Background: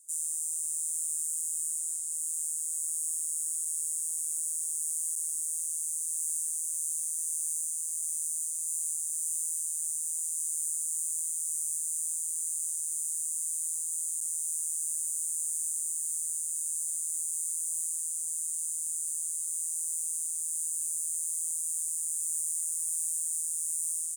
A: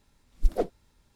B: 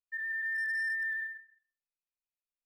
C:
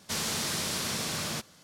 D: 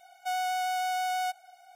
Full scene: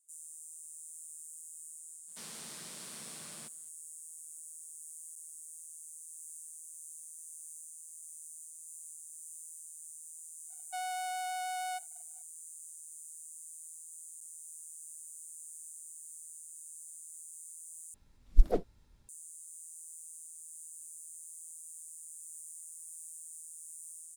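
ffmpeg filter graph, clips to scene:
ffmpeg -i bed.wav -i cue0.wav -i cue1.wav -i cue2.wav -i cue3.wav -filter_complex "[0:a]volume=-16dB[link_01];[3:a]highpass=frequency=140:width=0.5412,highpass=frequency=140:width=1.3066[link_02];[4:a]agate=range=-33dB:threshold=-47dB:ratio=3:release=100:detection=peak[link_03];[1:a]lowshelf=frequency=200:gain=7.5[link_04];[link_01]asplit=2[link_05][link_06];[link_05]atrim=end=17.944[link_07];[link_04]atrim=end=1.15,asetpts=PTS-STARTPTS,volume=-5dB[link_08];[link_06]atrim=start=19.086[link_09];[link_02]atrim=end=1.63,asetpts=PTS-STARTPTS,volume=-17.5dB,afade=type=in:duration=0.02,afade=type=out:start_time=1.61:duration=0.02,adelay=2070[link_10];[link_03]atrim=end=1.75,asetpts=PTS-STARTPTS,volume=-7.5dB,afade=type=in:duration=0.004:curve=hsin,afade=type=out:start_time=1.746:duration=0.004:curve=hsin,adelay=10470[link_11];[link_07][link_08]acrossfade=duration=0.004:curve1=hsin:curve2=hsin[link_12];[link_12][link_09]acrossfade=duration=0.004:curve1=hsin:curve2=hsin[link_13];[link_13][link_10][link_11]amix=inputs=3:normalize=0" out.wav

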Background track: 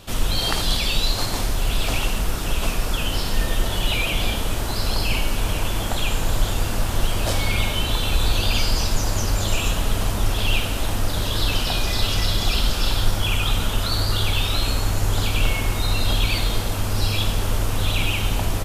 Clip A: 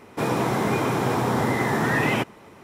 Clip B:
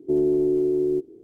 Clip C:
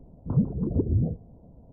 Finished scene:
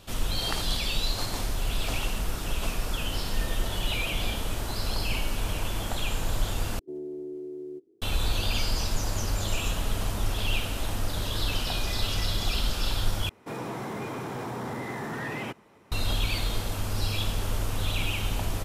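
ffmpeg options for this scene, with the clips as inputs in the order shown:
ffmpeg -i bed.wav -i cue0.wav -i cue1.wav -filter_complex "[0:a]volume=-7dB[link_01];[2:a]lowshelf=frequency=86:gain=-11[link_02];[1:a]asoftclip=type=tanh:threshold=-17dB[link_03];[link_01]asplit=3[link_04][link_05][link_06];[link_04]atrim=end=6.794[link_07];[link_02]atrim=end=1.23,asetpts=PTS-STARTPTS,volume=-15.5dB[link_08];[link_05]atrim=start=8.016:end=13.294[link_09];[link_03]atrim=end=2.63,asetpts=PTS-STARTPTS,volume=-10dB[link_10];[link_06]atrim=start=15.916[link_11];[link_07][link_08]acrossfade=duration=0.004:curve1=hsin:curve2=hsin[link_12];[link_12][link_09]acrossfade=duration=0.004:curve1=hsin:curve2=hsin[link_13];[link_13][link_10]acrossfade=duration=0.004:curve1=hsin:curve2=hsin[link_14];[link_14][link_11]acrossfade=duration=0.004:curve1=hsin:curve2=hsin" out.wav

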